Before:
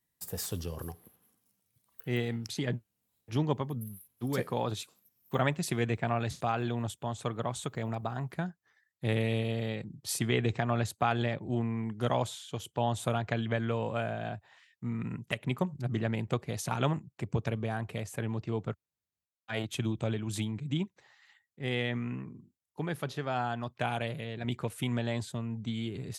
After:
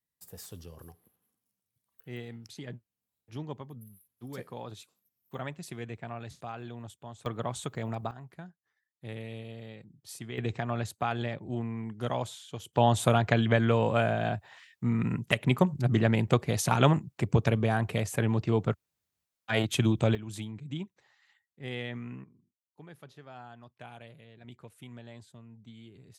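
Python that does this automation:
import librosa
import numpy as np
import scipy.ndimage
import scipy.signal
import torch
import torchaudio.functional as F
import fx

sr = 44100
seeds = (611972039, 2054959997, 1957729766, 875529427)

y = fx.gain(x, sr, db=fx.steps((0.0, -9.5), (7.26, 0.0), (8.11, -11.0), (10.38, -2.5), (12.73, 7.0), (20.15, -5.0), (22.24, -15.0)))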